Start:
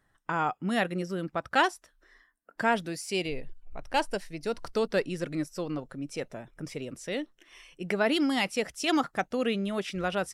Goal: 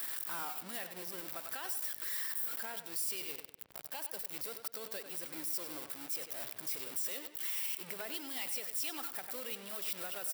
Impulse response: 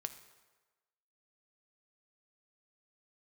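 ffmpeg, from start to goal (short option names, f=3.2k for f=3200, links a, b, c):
-filter_complex "[0:a]aeval=exprs='val(0)+0.5*0.0501*sgn(val(0))':c=same,anlmdn=0.398,agate=range=-7dB:threshold=-26dB:ratio=16:detection=peak,acompressor=threshold=-33dB:ratio=20,highpass=84,aemphasis=mode=production:type=riaa,bandreject=f=6.5k:w=5.4,asplit=2[a][b];[b]adelay=97,lowpass=f=4.4k:p=1,volume=-10.5dB,asplit=2[c][d];[d]adelay=97,lowpass=f=4.4k:p=1,volume=0.4,asplit=2[e][f];[f]adelay=97,lowpass=f=4.4k:p=1,volume=0.4,asplit=2[g][h];[h]adelay=97,lowpass=f=4.4k:p=1,volume=0.4[i];[c][e][g][i]amix=inputs=4:normalize=0[j];[a][j]amix=inputs=2:normalize=0,adynamicequalizer=threshold=0.00141:dfrequency=200:dqfactor=2:tfrequency=200:tqfactor=2:attack=5:release=100:ratio=0.375:range=2.5:mode=cutabove:tftype=bell,alimiter=limit=-19.5dB:level=0:latency=1:release=107,asplit=2[k][l];[l]asetrate=52444,aresample=44100,atempo=0.840896,volume=-15dB[m];[k][m]amix=inputs=2:normalize=0,volume=-6.5dB"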